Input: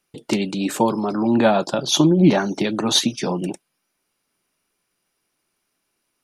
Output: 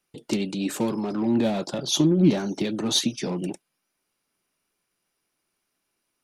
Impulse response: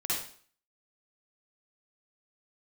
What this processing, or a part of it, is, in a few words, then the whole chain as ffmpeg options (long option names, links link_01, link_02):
one-band saturation: -filter_complex "[0:a]acrossover=split=510|2900[link_01][link_02][link_03];[link_02]asoftclip=type=tanh:threshold=-32dB[link_04];[link_01][link_04][link_03]amix=inputs=3:normalize=0,volume=-4dB"